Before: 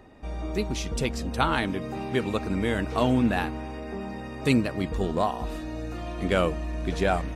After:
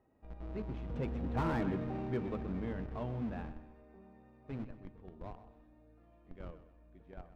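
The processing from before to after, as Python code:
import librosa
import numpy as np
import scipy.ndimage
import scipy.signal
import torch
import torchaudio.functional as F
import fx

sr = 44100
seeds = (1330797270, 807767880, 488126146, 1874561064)

p1 = scipy.signal.medfilt(x, 9)
p2 = fx.doppler_pass(p1, sr, speed_mps=7, closest_m=2.7, pass_at_s=1.57)
p3 = scipy.signal.sosfilt(scipy.signal.butter(2, 42.0, 'highpass', fs=sr, output='sos'), p2)
p4 = fx.hum_notches(p3, sr, base_hz=50, count=9)
p5 = fx.dynamic_eq(p4, sr, hz=140.0, q=1.8, threshold_db=-46.0, ratio=4.0, max_db=3)
p6 = fx.schmitt(p5, sr, flips_db=-38.5)
p7 = p5 + (p6 * 10.0 ** (-4.0 / 20.0))
p8 = fx.spacing_loss(p7, sr, db_at_10k=32)
p9 = p8 + fx.echo_feedback(p8, sr, ms=127, feedback_pct=37, wet_db=-14.0, dry=0)
p10 = fx.slew_limit(p9, sr, full_power_hz=40.0)
y = p10 * 10.0 ** (-5.5 / 20.0)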